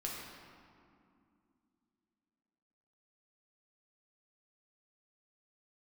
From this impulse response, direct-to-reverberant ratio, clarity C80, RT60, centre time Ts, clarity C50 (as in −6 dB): −4.0 dB, 1.5 dB, 2.5 s, 103 ms, 0.0 dB